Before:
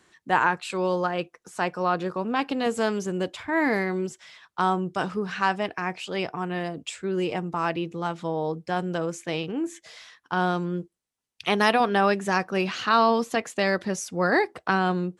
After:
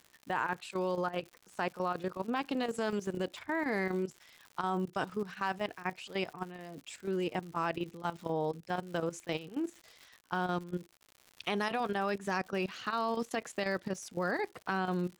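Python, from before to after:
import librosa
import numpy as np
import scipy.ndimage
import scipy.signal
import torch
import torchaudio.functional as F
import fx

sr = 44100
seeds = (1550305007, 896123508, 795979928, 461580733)

y = fx.level_steps(x, sr, step_db=14)
y = fx.chopper(y, sr, hz=4.1, depth_pct=60, duty_pct=90)
y = fx.dmg_crackle(y, sr, seeds[0], per_s=140.0, level_db=-39.0)
y = F.gain(torch.from_numpy(y), -4.0).numpy()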